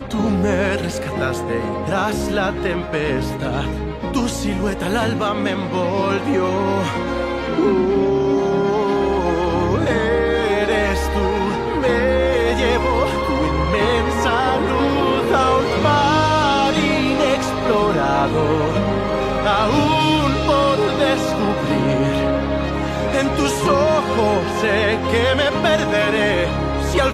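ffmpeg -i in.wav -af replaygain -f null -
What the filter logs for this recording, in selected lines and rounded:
track_gain = +0.0 dB
track_peak = 0.484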